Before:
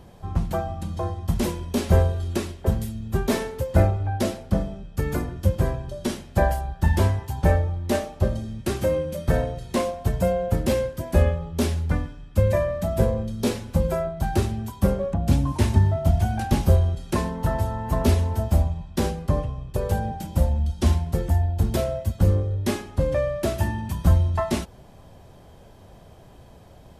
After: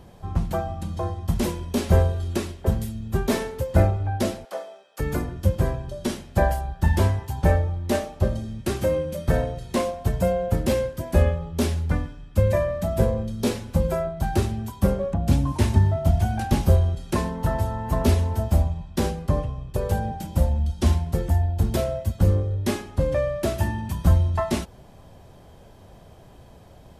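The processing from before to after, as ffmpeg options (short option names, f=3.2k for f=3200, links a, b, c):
-filter_complex "[0:a]asettb=1/sr,asplit=3[a][b][c];[a]atrim=end=4.454[d];[b]atrim=start=4.45:end=5,asetpts=PTS-STARTPTS,afade=t=in:d=0.004:c=qsin,afade=t=out:st=0.546:d=0.004:c=qsin,highpass=f=500:w=0.5412,highpass=f=500:w=1.3066[e];[c]atrim=start=4.996[f];[d][e]acrossfade=d=0.004:c1=hsin:c2=qsin[g];[g][f]acrossfade=d=0.004:c1=qsin:c2=hsin"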